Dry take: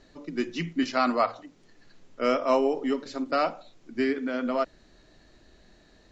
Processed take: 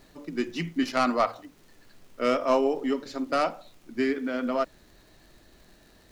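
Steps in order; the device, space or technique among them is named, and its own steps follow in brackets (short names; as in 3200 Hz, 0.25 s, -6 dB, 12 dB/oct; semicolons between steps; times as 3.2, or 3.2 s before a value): record under a worn stylus (tracing distortion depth 0.047 ms; crackle; pink noise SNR 34 dB)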